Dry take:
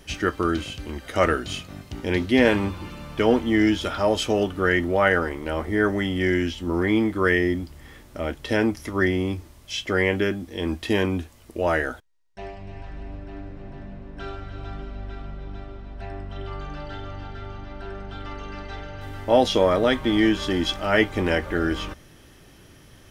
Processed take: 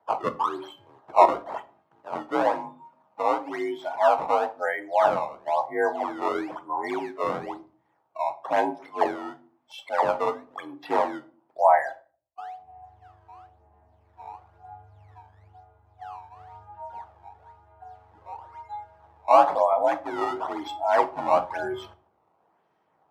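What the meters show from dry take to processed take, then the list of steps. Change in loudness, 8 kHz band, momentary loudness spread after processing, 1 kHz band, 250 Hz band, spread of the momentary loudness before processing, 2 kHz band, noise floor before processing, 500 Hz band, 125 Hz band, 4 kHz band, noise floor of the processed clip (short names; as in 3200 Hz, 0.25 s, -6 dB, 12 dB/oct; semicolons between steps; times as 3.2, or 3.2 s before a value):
-2.0 dB, under -10 dB, 22 LU, +6.5 dB, -13.5 dB, 19 LU, -9.0 dB, -50 dBFS, -2.5 dB, -21.0 dB, -14.0 dB, -69 dBFS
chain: spectral noise reduction 20 dB; vocal rider within 5 dB 0.5 s; decimation with a swept rate 16×, swing 160% 1 Hz; frequency shift +51 Hz; band-pass 860 Hz, Q 3.4; shoebox room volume 330 m³, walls furnished, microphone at 0.59 m; gain +9 dB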